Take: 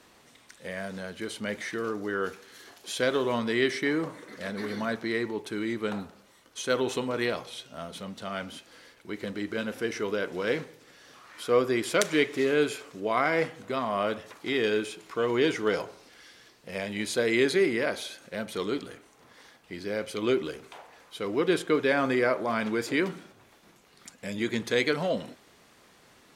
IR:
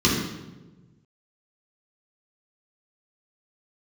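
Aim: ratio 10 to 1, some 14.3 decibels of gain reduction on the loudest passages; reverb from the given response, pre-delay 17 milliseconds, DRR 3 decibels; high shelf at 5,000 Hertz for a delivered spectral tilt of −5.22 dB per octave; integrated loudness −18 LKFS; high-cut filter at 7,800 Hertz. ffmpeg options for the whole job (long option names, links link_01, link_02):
-filter_complex "[0:a]lowpass=7800,highshelf=frequency=5000:gain=5.5,acompressor=threshold=-33dB:ratio=10,asplit=2[link_01][link_02];[1:a]atrim=start_sample=2205,adelay=17[link_03];[link_02][link_03]afir=irnorm=-1:irlink=0,volume=-20.5dB[link_04];[link_01][link_04]amix=inputs=2:normalize=0,volume=15dB"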